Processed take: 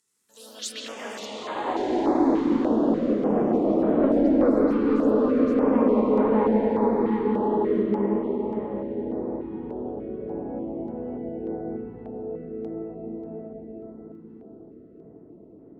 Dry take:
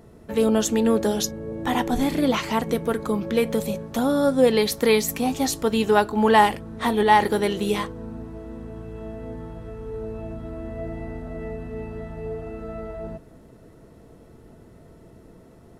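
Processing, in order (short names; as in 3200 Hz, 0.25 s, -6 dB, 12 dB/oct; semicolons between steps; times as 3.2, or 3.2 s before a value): band-pass sweep 7700 Hz -> 310 Hz, 0.27–2.14; echoes that change speed 80 ms, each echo +2 st, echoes 3; soft clip -19 dBFS, distortion -16 dB; reverb RT60 5.8 s, pre-delay 0.118 s, DRR -5.5 dB; stepped notch 3.4 Hz 630–5500 Hz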